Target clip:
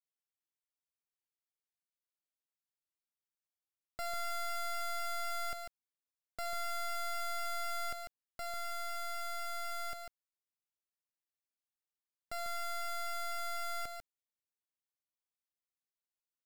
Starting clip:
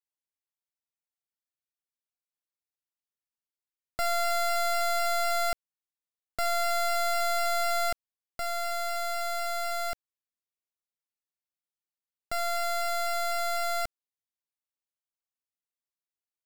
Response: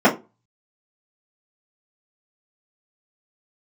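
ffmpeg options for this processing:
-af "asoftclip=type=tanh:threshold=-29dB,aecho=1:1:146:0.501,volume=-7.5dB"

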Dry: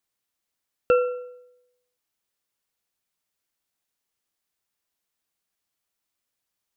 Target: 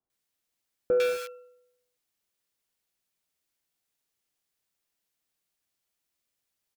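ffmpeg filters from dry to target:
-filter_complex "[0:a]asplit=2[a][b];[b]acrusher=bits=4:mix=0:aa=0.000001,volume=-5dB[c];[a][c]amix=inputs=2:normalize=0,asoftclip=type=tanh:threshold=-20dB,acrossover=split=1100[d][e];[e]adelay=100[f];[d][f]amix=inputs=2:normalize=0"

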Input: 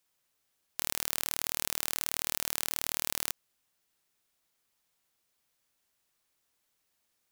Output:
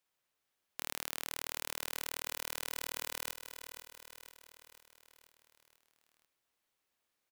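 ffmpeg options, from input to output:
-af "bass=f=250:g=-4,treble=f=4k:g=-6,aecho=1:1:490|980|1470|1960|2450|2940:0.335|0.184|0.101|0.0557|0.0307|0.0169,volume=-3dB"

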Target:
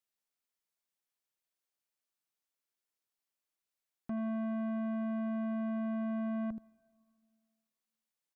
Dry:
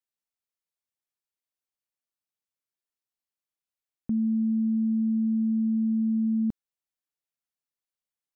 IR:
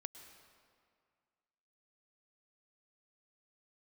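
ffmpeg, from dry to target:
-filter_complex "[0:a]equalizer=f=63:w=0.94:g=-13,aecho=1:1:77:0.168,asoftclip=type=tanh:threshold=-35.5dB,asplit=2[a][b];[1:a]atrim=start_sample=2205[c];[b][c]afir=irnorm=-1:irlink=0,volume=-10.5dB[d];[a][d]amix=inputs=2:normalize=0"

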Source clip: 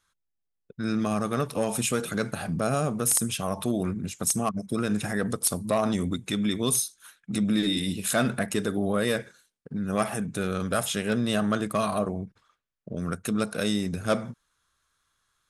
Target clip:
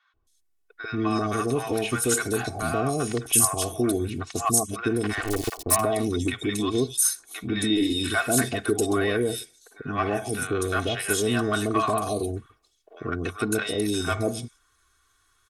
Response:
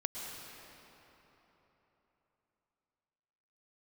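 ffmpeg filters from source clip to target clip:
-filter_complex "[0:a]asettb=1/sr,asplit=3[a][b][c];[a]atrim=end=4.994[d];[b]atrim=start=4.99:end=5.54,asetpts=PTS-STARTPTS,afade=t=in:d=0.004:c=qsin,afade=t=out:st=0.546:d=0.004:c=qsin,aeval=exprs='val(0)*gte(abs(val(0)),0.0562)':c=same[e];[c]atrim=start=5.536[f];[d][e]acrossfade=d=0.004:c1=hsin:c2=qsin[g];[g][f]acrossfade=d=0.004:c1=qsin:c2=hsin,asplit=2[h][i];[i]acompressor=threshold=-35dB:ratio=6,volume=1dB[j];[h][j]amix=inputs=2:normalize=0,aecho=1:1:2.7:0.84,acrossover=split=720|3700[k][l][m];[k]adelay=140[n];[m]adelay=270[o];[n][l][o]amix=inputs=3:normalize=0" -ar 44100 -c:a libvorbis -b:a 128k

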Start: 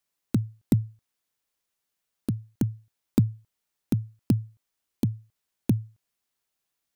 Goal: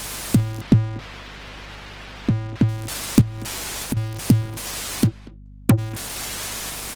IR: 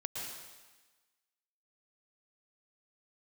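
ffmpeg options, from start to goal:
-filter_complex "[0:a]aeval=exprs='val(0)+0.5*0.0266*sgn(val(0))':c=same,asettb=1/sr,asplit=3[a][b][c];[a]atrim=end=0.614[d];[b]atrim=start=0.61:end=2.69,asetpts=PTS-STARTPTS,afade=t=in:d=0.004:c=qsin,afade=t=out:st=2.076:d=0.004:c=qsin,lowpass=3.4k[e];[c]atrim=start=2.686[f];[d][e]acrossfade=d=0.004:c1=hsin:c2=qsin[g];[g][f]acrossfade=d=0.004:c1=qsin:c2=hsin,asettb=1/sr,asplit=3[h][i][j];[h]atrim=end=3.214[k];[i]atrim=start=3.21:end=3.97,asetpts=PTS-STARTPTS,afade=t=in:d=0.004:c=qsin,afade=t=out:st=0.756:d=0.004:c=qsin,acompressor=threshold=-30dB:ratio=10[l];[j]atrim=start=3.966[m];[k][l]acrossfade=d=0.004:c1=hsin:c2=qsin[n];[n][m]acrossfade=d=0.004:c1=qsin:c2=hsin,asplit=3[o][p][q];[o]afade=t=out:st=5.06:d=0.02[r];[p]acrusher=bits=3:mix=0:aa=0.5,afade=t=in:st=5.06:d=0.02,afade=t=out:st=5.77:d=0.02[s];[q]afade=t=in:st=5.77:d=0.02[t];[r][s][t]amix=inputs=3:normalize=0,crystalizer=i=3:c=0,asoftclip=type=hard:threshold=-5.5dB,adynamicsmooth=sensitivity=7:basefreq=1.8k,aeval=exprs='val(0)+0.00447*(sin(2*PI*50*n/s)+sin(2*PI*2*50*n/s)/2+sin(2*PI*3*50*n/s)/3+sin(2*PI*4*50*n/s)/4+sin(2*PI*5*50*n/s)/5)':c=same,asplit=2[u][v];[v]adelay=240,highpass=300,lowpass=3.4k,asoftclip=type=hard:threshold=-13dB,volume=-18dB[w];[u][w]amix=inputs=2:normalize=0,volume=6.5dB" -ar 48000 -c:a libopus -b:a 20k

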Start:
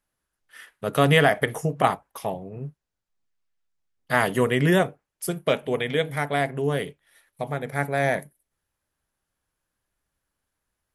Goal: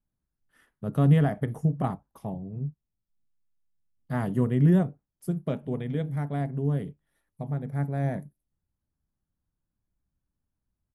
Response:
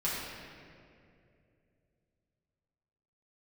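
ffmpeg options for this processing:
-af "firequalizer=gain_entry='entry(200,0);entry(460,-14);entry(810,-14);entry(2200,-24);entry(9700,-21)':delay=0.05:min_phase=1,volume=3dB"

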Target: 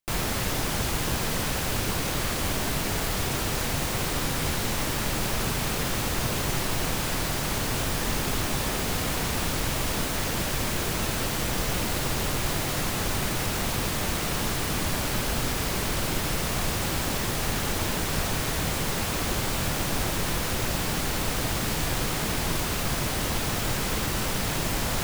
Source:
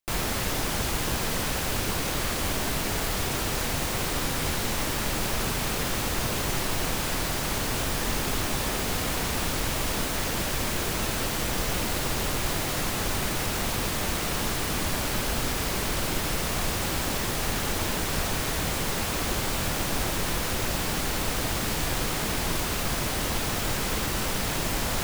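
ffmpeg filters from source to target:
-af "equalizer=f=130:w=1.3:g=3"

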